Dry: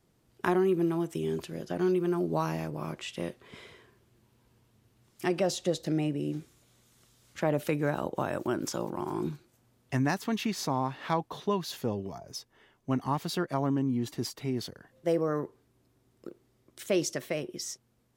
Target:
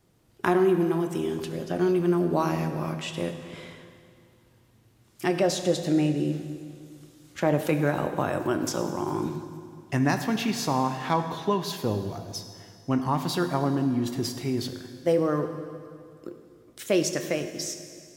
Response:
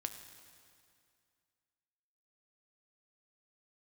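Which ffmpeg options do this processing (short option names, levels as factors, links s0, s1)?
-filter_complex "[1:a]atrim=start_sample=2205[s0];[0:a][s0]afir=irnorm=-1:irlink=0,volume=2"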